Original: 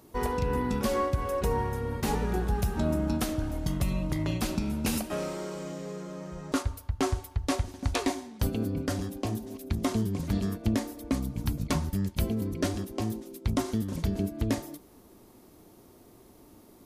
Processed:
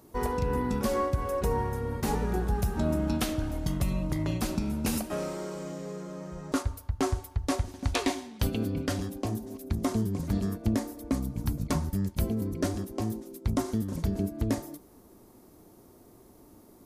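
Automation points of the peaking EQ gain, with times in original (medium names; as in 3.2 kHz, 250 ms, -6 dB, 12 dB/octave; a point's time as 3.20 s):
peaking EQ 3 kHz 1.3 oct
2.72 s -4 dB
3.23 s +4.5 dB
3.97 s -3.5 dB
7.58 s -3.5 dB
8.14 s +5 dB
8.84 s +5 dB
9.32 s -6 dB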